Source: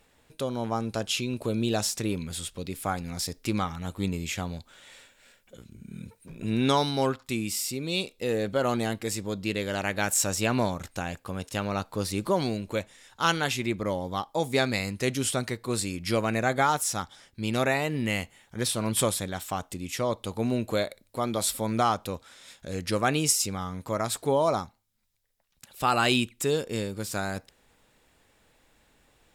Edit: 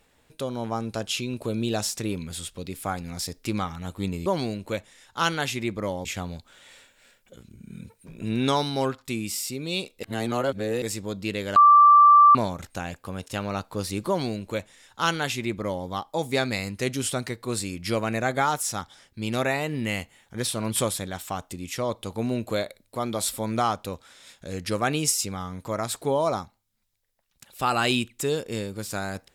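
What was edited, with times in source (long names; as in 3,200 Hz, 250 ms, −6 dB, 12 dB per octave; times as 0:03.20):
0:08.24–0:09.03: reverse
0:09.77–0:10.56: beep over 1,170 Hz −10 dBFS
0:12.29–0:14.08: duplicate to 0:04.26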